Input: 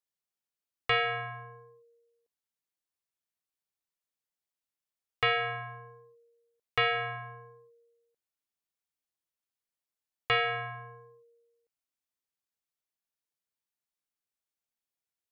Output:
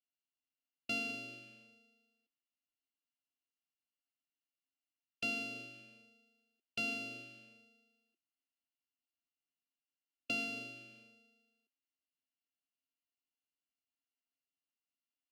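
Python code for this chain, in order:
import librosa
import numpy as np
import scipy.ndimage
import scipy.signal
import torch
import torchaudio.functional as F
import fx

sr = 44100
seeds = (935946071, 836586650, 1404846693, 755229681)

y = np.r_[np.sort(x[:len(x) // 64 * 64].reshape(-1, 64), axis=1).ravel(), x[len(x) // 64 * 64:]]
y = fx.vowel_filter(y, sr, vowel='i')
y = fx.formant_shift(y, sr, semitones=5)
y = y * 10.0 ** (9.0 / 20.0)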